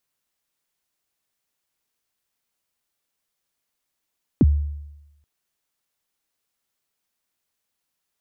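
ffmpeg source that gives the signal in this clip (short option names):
-f lavfi -i "aevalsrc='0.355*pow(10,-3*t/0.97)*sin(2*PI*(350*0.036/log(73/350)*(exp(log(73/350)*min(t,0.036)/0.036)-1)+73*max(t-0.036,0)))':d=0.83:s=44100"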